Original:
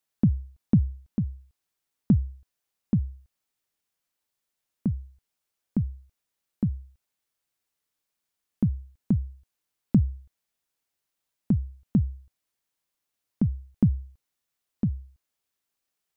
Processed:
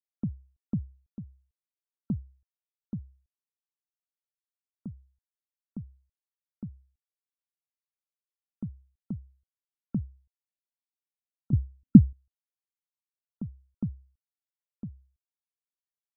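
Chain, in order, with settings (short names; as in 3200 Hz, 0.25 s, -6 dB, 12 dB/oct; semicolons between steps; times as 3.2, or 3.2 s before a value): 11.53–12.13 resonant low shelf 380 Hz +10 dB, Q 3; loudest bins only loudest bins 64; upward expander 1.5:1, over -30 dBFS; gain -4 dB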